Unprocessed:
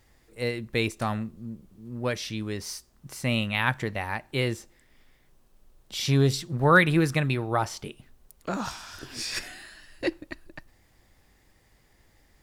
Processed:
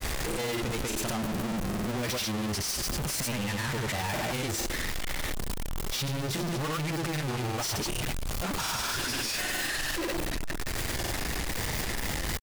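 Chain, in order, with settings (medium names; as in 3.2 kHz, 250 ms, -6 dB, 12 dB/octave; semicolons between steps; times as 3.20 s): one-bit comparator; granulator, pitch spread up and down by 0 st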